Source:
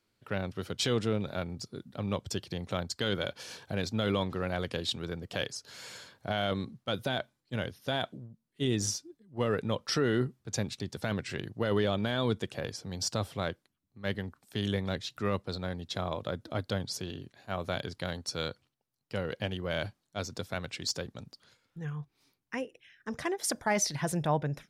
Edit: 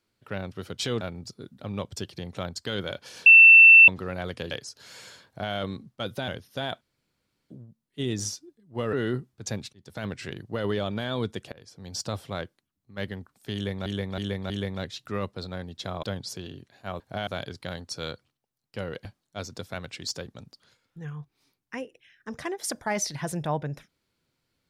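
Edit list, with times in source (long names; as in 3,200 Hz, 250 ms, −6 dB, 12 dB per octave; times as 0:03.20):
0:01.01–0:01.35: remove
0:03.60–0:04.22: beep over 2,680 Hz −8 dBFS
0:04.85–0:05.39: remove
0:06.14–0:06.41: duplicate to 0:17.64
0:07.16–0:07.59: remove
0:08.12: splice in room tone 0.69 s
0:09.55–0:10.00: remove
0:10.80–0:11.15: fade in
0:12.59–0:13.10: fade in, from −23.5 dB
0:14.61–0:14.93: repeat, 4 plays
0:16.14–0:16.67: remove
0:19.42–0:19.85: remove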